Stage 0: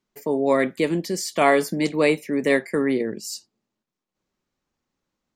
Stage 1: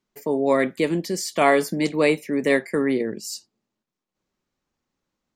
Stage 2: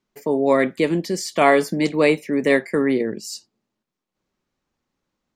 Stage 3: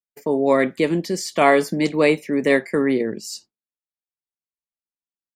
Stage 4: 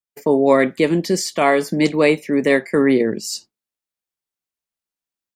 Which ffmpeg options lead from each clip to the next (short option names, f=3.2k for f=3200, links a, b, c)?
-af anull
-af "highshelf=f=8.6k:g=-7.5,volume=2.5dB"
-af "agate=range=-33dB:threshold=-39dB:ratio=3:detection=peak"
-af "dynaudnorm=f=100:g=3:m=7dB,volume=-1dB"